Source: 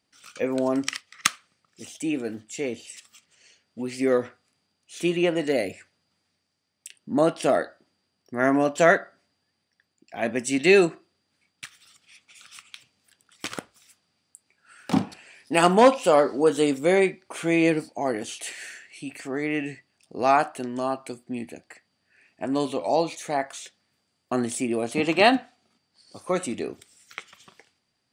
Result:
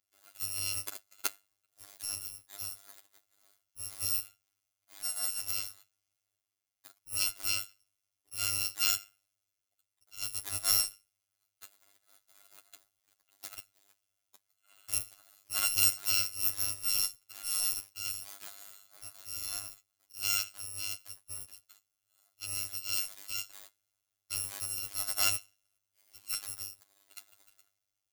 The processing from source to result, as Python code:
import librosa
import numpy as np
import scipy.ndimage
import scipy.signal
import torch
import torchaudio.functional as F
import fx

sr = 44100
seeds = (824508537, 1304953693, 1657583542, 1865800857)

y = fx.bit_reversed(x, sr, seeds[0], block=256)
y = fx.robotise(y, sr, hz=99.6)
y = y * librosa.db_to_amplitude(-9.0)